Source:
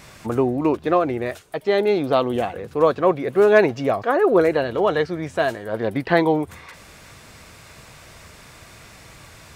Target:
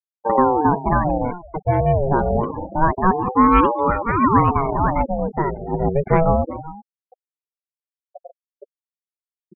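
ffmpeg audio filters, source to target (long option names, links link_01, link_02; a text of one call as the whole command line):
ffmpeg -i in.wav -filter_complex "[0:a]asplit=2[link_01][link_02];[link_02]aecho=0:1:382:0.168[link_03];[link_01][link_03]amix=inputs=2:normalize=0,adynamicsmooth=sensitivity=0.5:basefreq=4900,lowshelf=frequency=110:gain=6.5,afftfilt=real='re*gte(hypot(re,im),0.1)':imag='im*gte(hypot(re,im),0.1)':win_size=1024:overlap=0.75,lowpass=6300,aemphasis=mode=reproduction:type=riaa,aeval=exprs='val(0)*sin(2*PI*490*n/s+490*0.45/0.26*sin(2*PI*0.26*n/s))':channel_layout=same" out.wav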